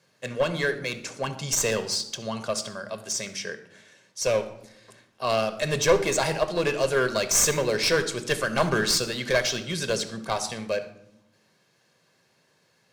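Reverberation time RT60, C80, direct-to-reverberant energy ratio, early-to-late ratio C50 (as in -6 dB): 0.90 s, 14.5 dB, 8.5 dB, 12.0 dB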